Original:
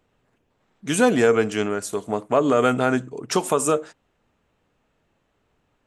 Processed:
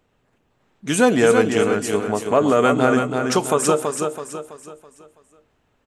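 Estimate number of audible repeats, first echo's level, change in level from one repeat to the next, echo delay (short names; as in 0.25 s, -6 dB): 4, -5.5 dB, -8.0 dB, 0.329 s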